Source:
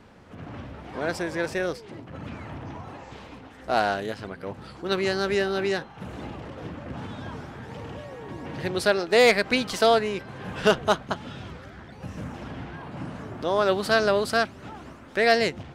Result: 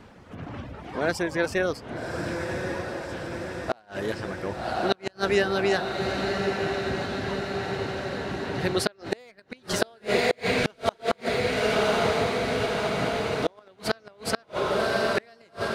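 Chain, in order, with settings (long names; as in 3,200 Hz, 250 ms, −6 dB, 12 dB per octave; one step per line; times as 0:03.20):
reverb reduction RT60 0.58 s
feedback delay with all-pass diffusion 1,117 ms, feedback 69%, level −5 dB
gate with flip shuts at −13 dBFS, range −35 dB
level +3 dB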